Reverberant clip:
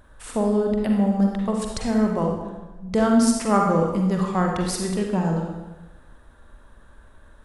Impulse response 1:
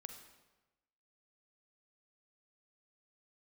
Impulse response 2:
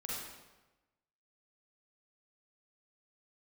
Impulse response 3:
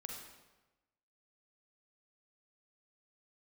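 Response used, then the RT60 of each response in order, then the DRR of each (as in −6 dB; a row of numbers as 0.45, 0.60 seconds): 3; 1.1, 1.1, 1.1 seconds; 6.0, −6.0, 0.5 decibels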